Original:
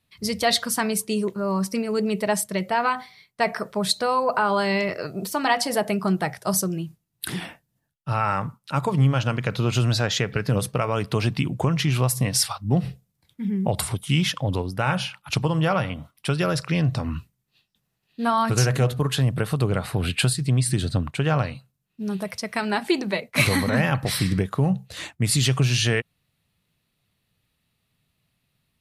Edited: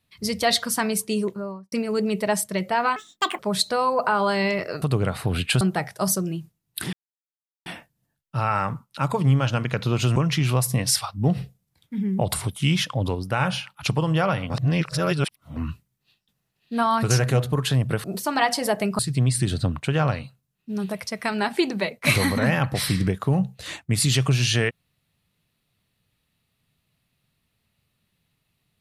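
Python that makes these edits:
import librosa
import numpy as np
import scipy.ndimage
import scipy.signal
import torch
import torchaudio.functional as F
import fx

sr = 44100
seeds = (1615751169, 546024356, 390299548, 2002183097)

y = fx.studio_fade_out(x, sr, start_s=1.2, length_s=0.52)
y = fx.edit(y, sr, fx.speed_span(start_s=2.96, length_s=0.73, speed=1.7),
    fx.swap(start_s=5.12, length_s=0.95, other_s=19.51, other_length_s=0.79),
    fx.insert_silence(at_s=7.39, length_s=0.73),
    fx.cut(start_s=9.89, length_s=1.74),
    fx.reverse_span(start_s=15.97, length_s=1.06), tone=tone)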